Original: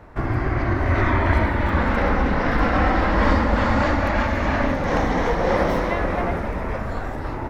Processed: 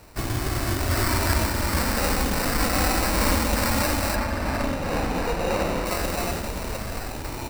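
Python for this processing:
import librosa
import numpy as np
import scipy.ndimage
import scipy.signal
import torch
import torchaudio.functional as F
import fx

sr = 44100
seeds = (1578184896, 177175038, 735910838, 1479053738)

y = fx.sample_hold(x, sr, seeds[0], rate_hz=3300.0, jitter_pct=0)
y = fx.high_shelf(y, sr, hz=4500.0, db=fx.steps((0.0, 8.0), (4.14, -6.0), (5.85, 6.0)))
y = y * librosa.db_to_amplitude(-4.5)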